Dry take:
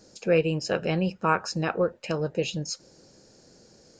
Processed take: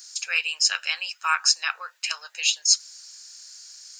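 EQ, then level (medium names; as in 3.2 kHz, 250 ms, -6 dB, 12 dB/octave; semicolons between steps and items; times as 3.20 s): high-pass 1.1 kHz 24 dB/octave; tilt EQ +3 dB/octave; treble shelf 2.1 kHz +9.5 dB; 0.0 dB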